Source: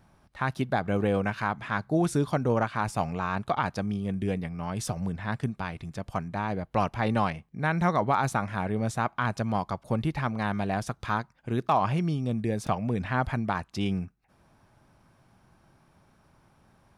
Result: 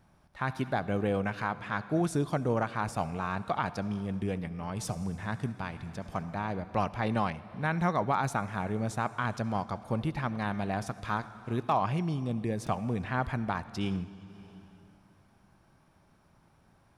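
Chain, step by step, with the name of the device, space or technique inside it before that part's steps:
compressed reverb return (on a send at −6 dB: convolution reverb RT60 2.2 s, pre-delay 60 ms + downward compressor 10 to 1, threshold −34 dBFS, peak gain reduction 14 dB)
on the sum: level −3.5 dB

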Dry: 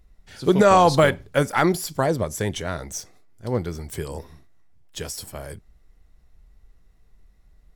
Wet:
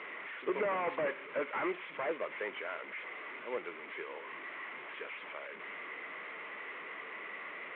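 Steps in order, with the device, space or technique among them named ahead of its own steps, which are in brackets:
high-pass filter 140 Hz 24 dB per octave
digital answering machine (band-pass filter 360–3,000 Hz; linear delta modulator 16 kbit/s, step −33.5 dBFS; loudspeaker in its box 380–3,800 Hz, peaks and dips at 750 Hz −8 dB, 1,100 Hz +5 dB, 2,100 Hz +10 dB)
level −7.5 dB

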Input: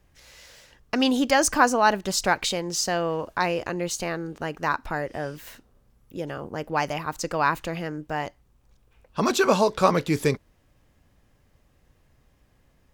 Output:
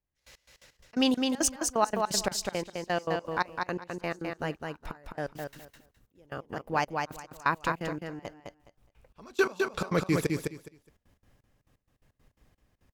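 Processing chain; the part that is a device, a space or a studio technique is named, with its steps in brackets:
trance gate with a delay (gate pattern "...x...x.x.xx" 171 BPM −24 dB; repeating echo 208 ms, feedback 19%, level −4 dB)
level −3 dB

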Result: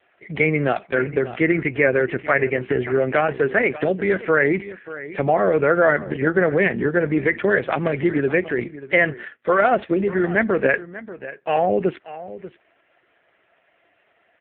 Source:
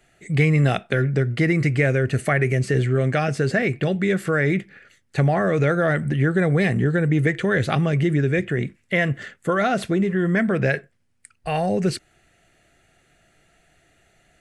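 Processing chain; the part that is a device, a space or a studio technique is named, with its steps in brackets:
0:04.59–0:05.51: dynamic equaliser 1,700 Hz, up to −6 dB, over −40 dBFS, Q 2.1
satellite phone (band-pass filter 330–3,000 Hz; single-tap delay 587 ms −15.5 dB; level +6 dB; AMR narrowband 4.75 kbit/s 8,000 Hz)

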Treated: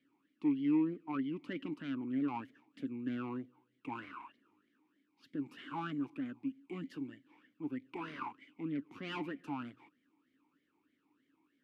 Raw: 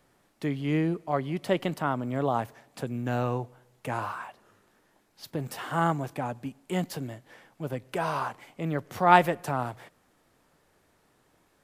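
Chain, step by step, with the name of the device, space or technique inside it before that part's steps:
talk box (tube saturation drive 26 dB, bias 0.75; formant filter swept between two vowels i-u 3.2 Hz)
level +6.5 dB

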